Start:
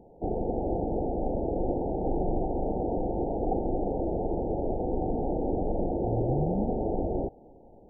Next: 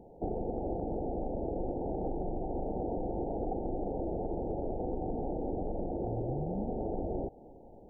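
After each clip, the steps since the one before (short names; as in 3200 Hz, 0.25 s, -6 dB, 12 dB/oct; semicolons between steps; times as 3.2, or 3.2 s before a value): compressor 6:1, threshold -31 dBFS, peak gain reduction 8.5 dB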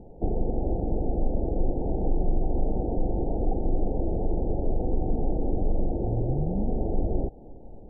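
tilt -3 dB/oct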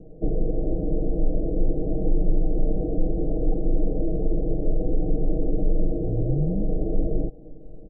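steep low-pass 660 Hz 48 dB/oct; comb 6.4 ms, depth 85%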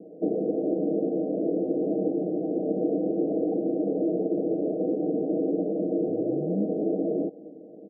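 Chebyshev band-pass 210–730 Hz, order 3; gain +4.5 dB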